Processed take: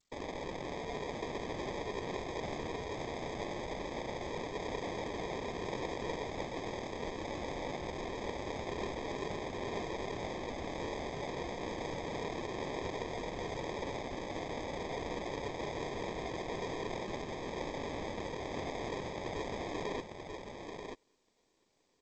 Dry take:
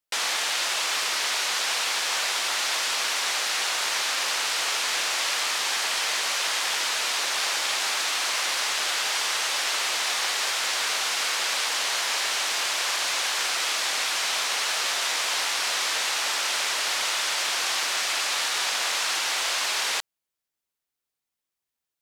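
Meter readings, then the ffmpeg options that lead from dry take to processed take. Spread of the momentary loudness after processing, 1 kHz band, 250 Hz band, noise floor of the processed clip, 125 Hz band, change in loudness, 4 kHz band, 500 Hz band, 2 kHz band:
2 LU, -10.5 dB, +10.0 dB, -73 dBFS, no reading, -16.0 dB, -24.5 dB, +1.5 dB, -19.5 dB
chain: -af "aemphasis=mode=production:type=75kf,areverse,acompressor=mode=upward:threshold=0.0316:ratio=2.5,areverse,flanger=delay=3.5:depth=1.4:regen=37:speed=0.28:shape=sinusoidal,acrusher=bits=4:mode=log:mix=0:aa=0.000001,bandpass=f=400:t=q:w=4.7:csg=0,afftfilt=real='hypot(re,im)*cos(2*PI*random(0))':imag='hypot(re,im)*sin(2*PI*random(1))':win_size=512:overlap=0.75,acrusher=samples=31:mix=1:aa=0.000001,aecho=1:1:937:0.531,volume=7.5" -ar 16000 -c:a g722

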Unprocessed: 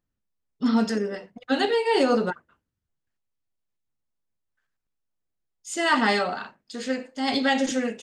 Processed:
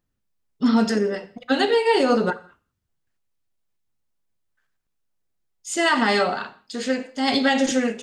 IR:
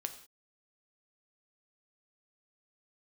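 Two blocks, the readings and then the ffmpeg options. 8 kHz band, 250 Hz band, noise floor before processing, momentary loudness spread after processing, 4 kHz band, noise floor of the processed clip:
+4.5 dB, +3.5 dB, -82 dBFS, 13 LU, +3.5 dB, -76 dBFS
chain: -filter_complex "[0:a]alimiter=limit=0.188:level=0:latency=1:release=100,asplit=2[s0][s1];[1:a]atrim=start_sample=2205[s2];[s1][s2]afir=irnorm=-1:irlink=0,volume=0.841[s3];[s0][s3]amix=inputs=2:normalize=0"

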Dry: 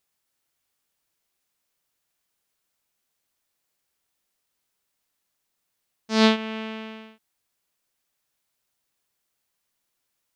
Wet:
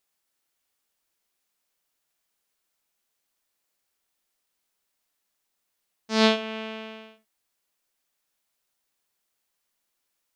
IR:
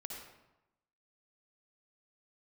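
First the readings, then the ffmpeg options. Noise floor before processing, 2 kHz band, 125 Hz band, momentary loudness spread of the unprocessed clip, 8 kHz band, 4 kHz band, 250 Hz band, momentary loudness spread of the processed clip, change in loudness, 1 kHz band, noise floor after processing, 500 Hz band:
-78 dBFS, -1.0 dB, no reading, 17 LU, -0.5 dB, 0.0 dB, -4.0 dB, 17 LU, -1.5 dB, -1.0 dB, -79 dBFS, 0.0 dB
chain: -filter_complex "[0:a]equalizer=f=110:w=1.1:g=-7.5,asplit=2[s0][s1];[1:a]atrim=start_sample=2205,atrim=end_sample=3528[s2];[s1][s2]afir=irnorm=-1:irlink=0,volume=1.19[s3];[s0][s3]amix=inputs=2:normalize=0,volume=0.562"

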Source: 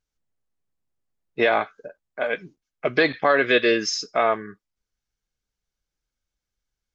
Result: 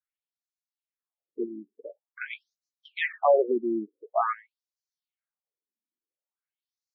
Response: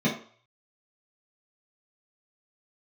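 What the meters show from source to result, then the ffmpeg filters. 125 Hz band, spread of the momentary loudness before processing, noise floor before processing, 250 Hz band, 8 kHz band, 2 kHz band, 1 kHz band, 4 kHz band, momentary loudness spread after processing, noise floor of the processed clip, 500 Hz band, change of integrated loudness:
under -15 dB, 13 LU, under -85 dBFS, -5.0 dB, no reading, -12.5 dB, -4.5 dB, -17.0 dB, 22 LU, under -85 dBFS, -5.0 dB, -6.0 dB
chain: -af "adynamicequalizer=threshold=0.0251:dfrequency=600:dqfactor=1:tfrequency=600:tqfactor=1:attack=5:release=100:ratio=0.375:range=3.5:mode=boostabove:tftype=bell,afftfilt=real='re*between(b*sr/1024,260*pow(5500/260,0.5+0.5*sin(2*PI*0.47*pts/sr))/1.41,260*pow(5500/260,0.5+0.5*sin(2*PI*0.47*pts/sr))*1.41)':imag='im*between(b*sr/1024,260*pow(5500/260,0.5+0.5*sin(2*PI*0.47*pts/sr))/1.41,260*pow(5500/260,0.5+0.5*sin(2*PI*0.47*pts/sr))*1.41)':win_size=1024:overlap=0.75,volume=0.596"

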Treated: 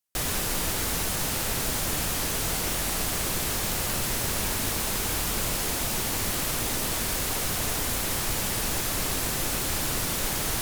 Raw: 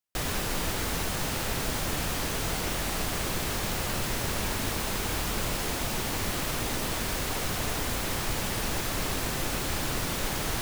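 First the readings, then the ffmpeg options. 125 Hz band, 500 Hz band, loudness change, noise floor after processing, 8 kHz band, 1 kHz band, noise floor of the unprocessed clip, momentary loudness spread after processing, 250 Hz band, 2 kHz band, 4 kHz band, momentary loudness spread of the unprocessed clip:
0.0 dB, 0.0 dB, +3.5 dB, -29 dBFS, +6.0 dB, 0.0 dB, -32 dBFS, 0 LU, 0.0 dB, +1.0 dB, +2.5 dB, 0 LU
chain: -af "equalizer=f=12000:t=o:w=1.8:g=7.5"

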